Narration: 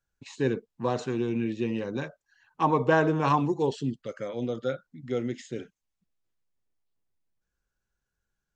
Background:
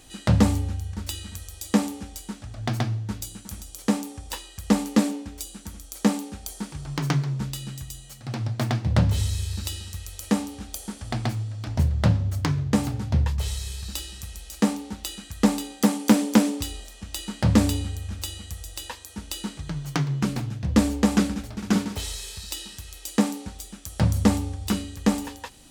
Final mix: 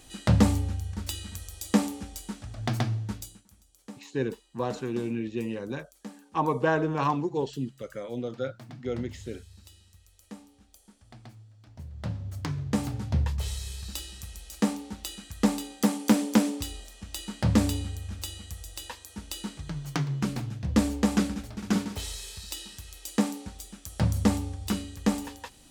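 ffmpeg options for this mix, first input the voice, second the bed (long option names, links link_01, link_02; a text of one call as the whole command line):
ffmpeg -i stem1.wav -i stem2.wav -filter_complex "[0:a]adelay=3750,volume=-2.5dB[link_01];[1:a]volume=15.5dB,afade=type=out:start_time=3.04:duration=0.42:silence=0.105925,afade=type=in:start_time=11.83:duration=1.13:silence=0.133352[link_02];[link_01][link_02]amix=inputs=2:normalize=0" out.wav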